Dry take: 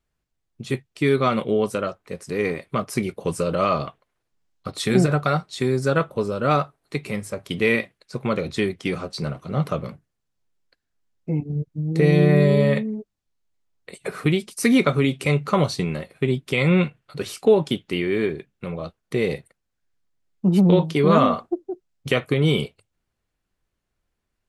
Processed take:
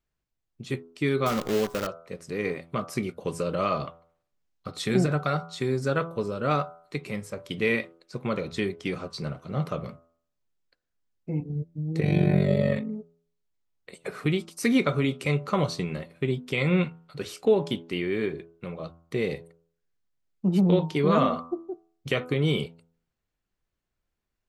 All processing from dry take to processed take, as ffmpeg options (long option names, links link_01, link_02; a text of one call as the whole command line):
ffmpeg -i in.wav -filter_complex "[0:a]asettb=1/sr,asplit=3[link_01][link_02][link_03];[link_01]atrim=end=1.264[link_04];[link_02]atrim=start=1.26:end=1.87,asetpts=PTS-STARTPTS,afade=type=in:duration=0.004:curve=qsin,afade=type=out:start_time=0.606:duration=0.004:curve=qsin,aemphasis=mode=reproduction:type=50fm,bandreject=frequency=930:width=14,acrusher=bits=5:dc=4:mix=0:aa=0.000001[link_05];[link_03]atrim=start=1.866[link_06];[link_04][link_05]acrossfade=duration=0.004:curve1=hsin:curve2=qsin[link_07];[link_07][link_06]acrossfade=duration=0.004:curve1=qsin:curve2=hsin,asettb=1/sr,asplit=3[link_08][link_09][link_10];[link_08]atrim=end=12.004[link_11];[link_09]atrim=start=12:end=12.9,asetpts=PTS-STARTPTS,afade=type=in:duration=0.004:curve=qsin,afade=type=out:start_time=0.896:duration=0.004:curve=qsin,aecho=1:1:5.5:0.63,atrim=end_sample=39690,tremolo=f=47:d=0.788[link_12];[link_10]atrim=start=12.896[link_13];[link_11][link_12]acrossfade=duration=0.004:curve1=hsin:curve2=qsin[link_14];[link_14][link_13]acrossfade=duration=0.004:curve1=qsin:curve2=hsin,equalizer=frequency=10000:width=3:gain=-6.5,bandreject=frequency=83.38:width_type=h:width=4,bandreject=frequency=166.76:width_type=h:width=4,bandreject=frequency=250.14:width_type=h:width=4,bandreject=frequency=333.52:width_type=h:width=4,bandreject=frequency=416.9:width_type=h:width=4,bandreject=frequency=500.28:width_type=h:width=4,bandreject=frequency=583.66:width_type=h:width=4,bandreject=frequency=667.04:width_type=h:width=4,bandreject=frequency=750.42:width_type=h:width=4,bandreject=frequency=833.8:width_type=h:width=4,bandreject=frequency=917.18:width_type=h:width=4,bandreject=frequency=1000.56:width_type=h:width=4,bandreject=frequency=1083.94:width_type=h:width=4,bandreject=frequency=1167.32:width_type=h:width=4,bandreject=frequency=1250.7:width_type=h:width=4,bandreject=frequency=1334.08:width_type=h:width=4,bandreject=frequency=1417.46:width_type=h:width=4,bandreject=frequency=1500.84:width_type=h:width=4,volume=-5dB" out.wav